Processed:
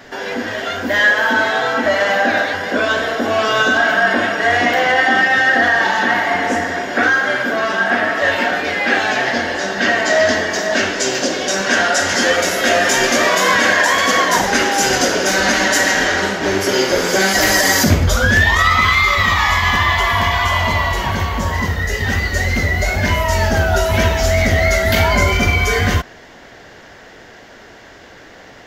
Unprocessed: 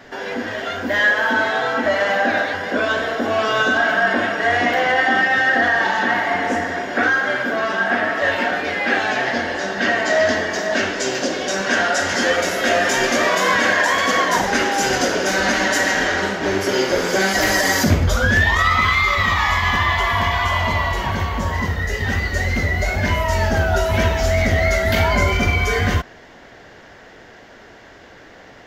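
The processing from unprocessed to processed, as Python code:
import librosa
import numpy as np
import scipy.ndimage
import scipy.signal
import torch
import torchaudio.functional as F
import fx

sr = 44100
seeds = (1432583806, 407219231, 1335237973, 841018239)

y = fx.high_shelf(x, sr, hz=4300.0, db=5.5)
y = F.gain(torch.from_numpy(y), 2.5).numpy()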